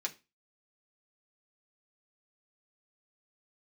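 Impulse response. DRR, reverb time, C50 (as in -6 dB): -1.0 dB, 0.25 s, 18.5 dB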